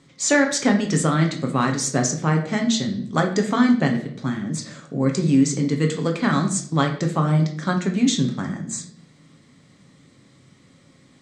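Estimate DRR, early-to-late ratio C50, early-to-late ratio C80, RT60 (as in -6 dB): 2.5 dB, 9.0 dB, 13.0 dB, 0.60 s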